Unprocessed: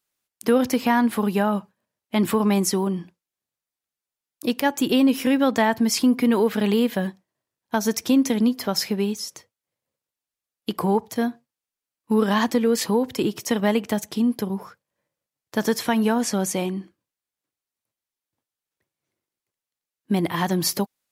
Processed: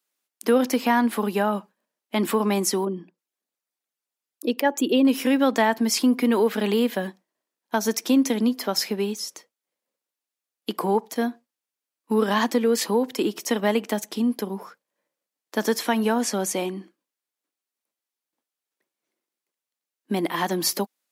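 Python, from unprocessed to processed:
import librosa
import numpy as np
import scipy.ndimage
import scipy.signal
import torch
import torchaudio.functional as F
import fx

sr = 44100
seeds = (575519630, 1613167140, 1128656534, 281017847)

y = fx.envelope_sharpen(x, sr, power=1.5, at=(2.85, 5.05))
y = scipy.signal.sosfilt(scipy.signal.butter(4, 220.0, 'highpass', fs=sr, output='sos'), y)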